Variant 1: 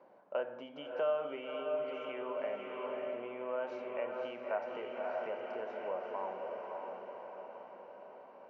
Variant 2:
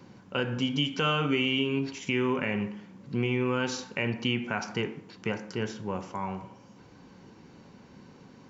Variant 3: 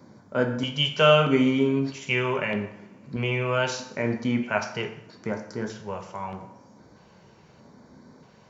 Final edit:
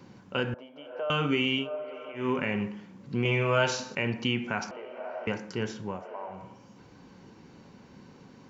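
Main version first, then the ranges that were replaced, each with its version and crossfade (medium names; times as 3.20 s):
2
0.54–1.10 s: from 1
1.63–2.21 s: from 1, crossfade 0.16 s
3.25–3.95 s: from 3
4.71–5.27 s: from 1
5.97–6.38 s: from 1, crossfade 0.24 s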